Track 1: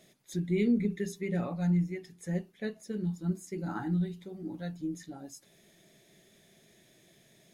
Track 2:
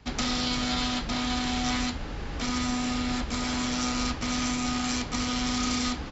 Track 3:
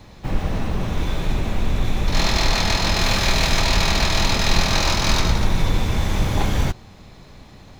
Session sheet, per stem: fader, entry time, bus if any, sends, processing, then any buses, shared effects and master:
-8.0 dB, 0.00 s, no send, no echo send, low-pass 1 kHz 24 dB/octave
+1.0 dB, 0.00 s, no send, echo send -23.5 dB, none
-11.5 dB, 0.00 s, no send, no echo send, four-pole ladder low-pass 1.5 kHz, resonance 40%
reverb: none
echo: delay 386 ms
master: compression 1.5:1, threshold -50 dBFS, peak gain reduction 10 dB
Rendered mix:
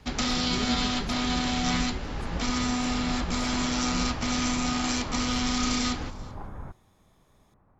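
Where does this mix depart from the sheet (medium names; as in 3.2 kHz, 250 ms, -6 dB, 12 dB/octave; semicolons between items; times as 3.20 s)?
stem 1: missing low-pass 1 kHz 24 dB/octave; master: missing compression 1.5:1, threshold -50 dBFS, peak gain reduction 10 dB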